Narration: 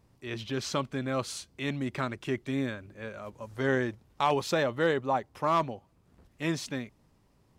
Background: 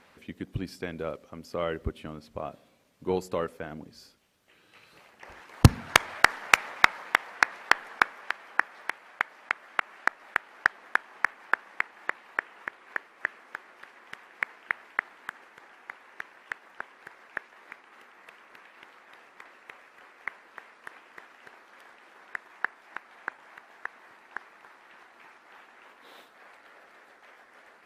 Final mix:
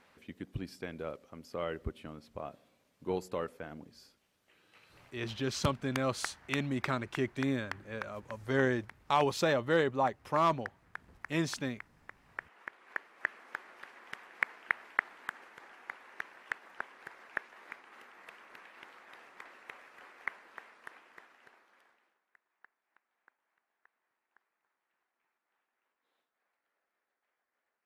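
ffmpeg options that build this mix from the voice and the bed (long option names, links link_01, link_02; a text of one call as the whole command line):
ffmpeg -i stem1.wav -i stem2.wav -filter_complex "[0:a]adelay=4900,volume=-1.5dB[link_01];[1:a]volume=12dB,afade=type=out:start_time=5.18:duration=0.39:silence=0.211349,afade=type=in:start_time=12.1:duration=1.5:silence=0.125893,afade=type=out:start_time=20.17:duration=2.04:silence=0.0334965[link_02];[link_01][link_02]amix=inputs=2:normalize=0" out.wav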